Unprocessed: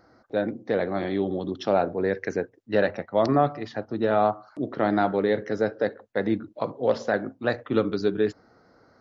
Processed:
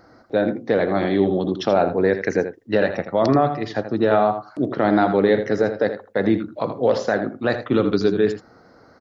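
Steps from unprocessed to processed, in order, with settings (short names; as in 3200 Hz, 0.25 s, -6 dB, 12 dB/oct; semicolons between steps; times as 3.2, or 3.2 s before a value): limiter -14.5 dBFS, peak gain reduction 6 dB; echo 81 ms -10.5 dB; gain +7 dB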